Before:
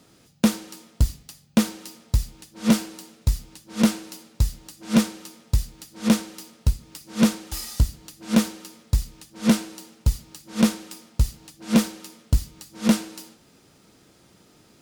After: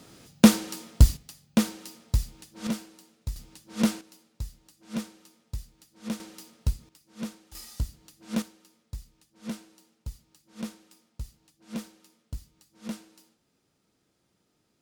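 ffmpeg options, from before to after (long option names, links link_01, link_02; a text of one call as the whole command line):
ffmpeg -i in.wav -af "asetnsamples=nb_out_samples=441:pad=0,asendcmd='1.17 volume volume -3.5dB;2.67 volume volume -12.5dB;3.36 volume volume -5dB;4.01 volume volume -14.5dB;6.2 volume volume -6dB;6.89 volume volume -17.5dB;7.55 volume volume -10.5dB;8.42 volume volume -17.5dB',volume=4dB" out.wav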